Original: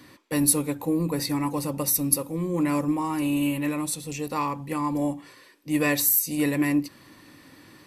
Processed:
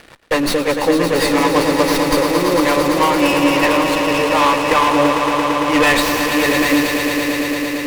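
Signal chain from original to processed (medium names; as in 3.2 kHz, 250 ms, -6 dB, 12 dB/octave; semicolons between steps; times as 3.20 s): three-band isolator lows -20 dB, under 460 Hz, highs -20 dB, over 4.4 kHz; waveshaping leveller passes 5; upward compressor, threshold -40 dBFS; rotary cabinet horn 5.5 Hz, later 0.8 Hz, at 2.91 s; on a send: echo with a slow build-up 113 ms, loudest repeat 5, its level -9 dB; on the sum: sliding maximum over 5 samples; trim +5 dB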